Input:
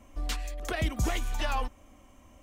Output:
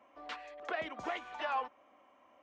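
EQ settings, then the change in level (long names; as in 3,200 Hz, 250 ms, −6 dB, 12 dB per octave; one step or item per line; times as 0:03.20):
high-pass filter 680 Hz 12 dB per octave
head-to-tape spacing loss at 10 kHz 41 dB
+4.0 dB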